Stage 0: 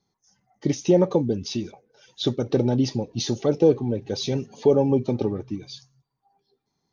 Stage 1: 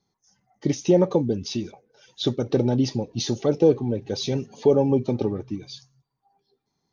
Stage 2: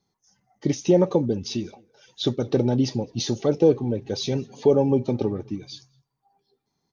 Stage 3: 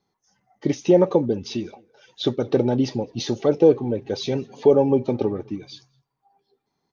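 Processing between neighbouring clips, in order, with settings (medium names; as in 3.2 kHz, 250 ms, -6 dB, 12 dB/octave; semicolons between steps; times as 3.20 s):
no audible change
echo from a far wall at 36 m, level -28 dB
tone controls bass -6 dB, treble -9 dB; trim +3.5 dB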